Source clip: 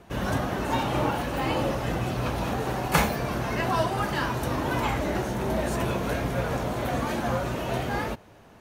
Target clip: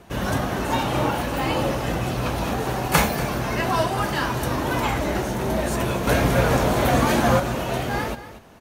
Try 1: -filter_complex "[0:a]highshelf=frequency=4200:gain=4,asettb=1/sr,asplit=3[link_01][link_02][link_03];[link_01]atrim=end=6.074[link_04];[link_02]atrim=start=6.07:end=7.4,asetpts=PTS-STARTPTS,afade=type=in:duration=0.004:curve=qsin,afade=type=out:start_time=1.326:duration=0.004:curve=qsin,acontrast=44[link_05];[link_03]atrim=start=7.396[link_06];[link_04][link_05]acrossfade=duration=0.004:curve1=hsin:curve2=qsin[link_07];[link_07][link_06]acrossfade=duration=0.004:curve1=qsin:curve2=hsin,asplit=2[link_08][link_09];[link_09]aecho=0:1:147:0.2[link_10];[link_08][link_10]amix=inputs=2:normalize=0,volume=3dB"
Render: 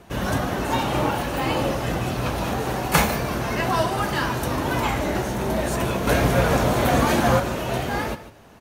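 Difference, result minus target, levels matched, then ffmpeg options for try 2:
echo 91 ms early
-filter_complex "[0:a]highshelf=frequency=4200:gain=4,asettb=1/sr,asplit=3[link_01][link_02][link_03];[link_01]atrim=end=6.074[link_04];[link_02]atrim=start=6.07:end=7.4,asetpts=PTS-STARTPTS,afade=type=in:duration=0.004:curve=qsin,afade=type=out:start_time=1.326:duration=0.004:curve=qsin,acontrast=44[link_05];[link_03]atrim=start=7.396[link_06];[link_04][link_05]acrossfade=duration=0.004:curve1=hsin:curve2=qsin[link_07];[link_07][link_06]acrossfade=duration=0.004:curve1=qsin:curve2=hsin,asplit=2[link_08][link_09];[link_09]aecho=0:1:238:0.2[link_10];[link_08][link_10]amix=inputs=2:normalize=0,volume=3dB"

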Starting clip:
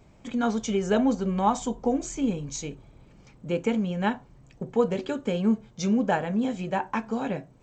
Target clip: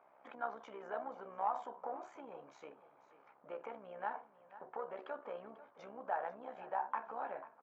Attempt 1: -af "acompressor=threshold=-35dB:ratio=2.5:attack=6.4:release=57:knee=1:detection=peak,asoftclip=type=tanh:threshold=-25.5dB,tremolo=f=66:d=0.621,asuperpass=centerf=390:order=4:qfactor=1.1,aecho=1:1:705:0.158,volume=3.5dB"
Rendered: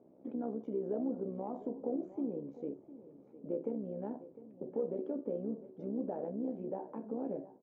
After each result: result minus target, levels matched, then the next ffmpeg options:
1,000 Hz band −14.0 dB; echo 213 ms late
-af "acompressor=threshold=-35dB:ratio=2.5:attack=6.4:release=57:knee=1:detection=peak,asoftclip=type=tanh:threshold=-25.5dB,tremolo=f=66:d=0.621,asuperpass=centerf=990:order=4:qfactor=1.1,aecho=1:1:705:0.158,volume=3.5dB"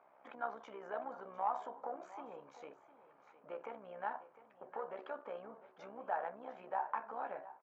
echo 213 ms late
-af "acompressor=threshold=-35dB:ratio=2.5:attack=6.4:release=57:knee=1:detection=peak,asoftclip=type=tanh:threshold=-25.5dB,tremolo=f=66:d=0.621,asuperpass=centerf=990:order=4:qfactor=1.1,aecho=1:1:492:0.158,volume=3.5dB"

